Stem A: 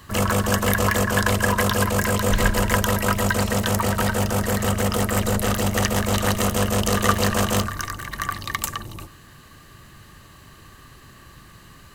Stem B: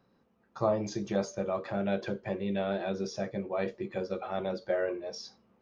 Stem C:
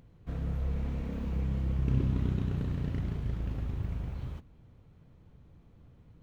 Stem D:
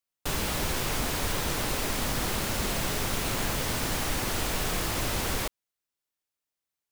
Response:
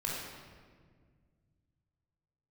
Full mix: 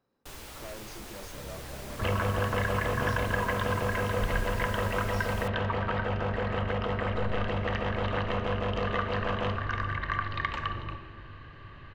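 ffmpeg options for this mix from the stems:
-filter_complex "[0:a]lowpass=f=3100:w=0.5412,lowpass=f=3100:w=1.3066,acompressor=threshold=0.0631:ratio=6,adelay=1900,volume=0.631,asplit=2[s0][s1];[s1]volume=0.422[s2];[1:a]asoftclip=type=tanh:threshold=0.0224,volume=0.422[s3];[2:a]highpass=110,adelay=1050,volume=0.562[s4];[3:a]volume=0.188[s5];[4:a]atrim=start_sample=2205[s6];[s2][s6]afir=irnorm=-1:irlink=0[s7];[s0][s3][s4][s5][s7]amix=inputs=5:normalize=0,equalizer=f=180:w=2.3:g=-7.5"

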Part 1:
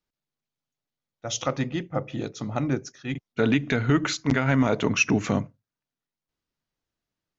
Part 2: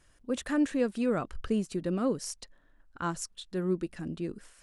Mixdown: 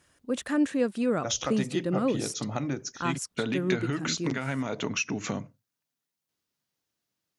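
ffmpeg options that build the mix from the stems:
-filter_complex "[0:a]highshelf=f=4100:g=9,acompressor=threshold=0.0501:ratio=12,volume=1[s0];[1:a]volume=1.26[s1];[s0][s1]amix=inputs=2:normalize=0,highpass=100"

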